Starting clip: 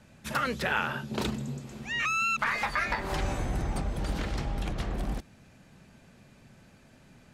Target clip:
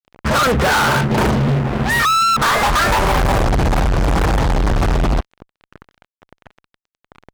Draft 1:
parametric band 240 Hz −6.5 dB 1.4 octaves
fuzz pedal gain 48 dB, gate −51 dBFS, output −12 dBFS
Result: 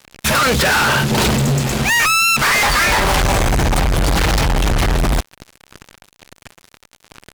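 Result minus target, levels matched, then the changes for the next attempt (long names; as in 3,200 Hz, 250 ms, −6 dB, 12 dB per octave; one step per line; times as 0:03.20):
1,000 Hz band −3.0 dB
add first: low-pass filter 1,400 Hz 24 dB per octave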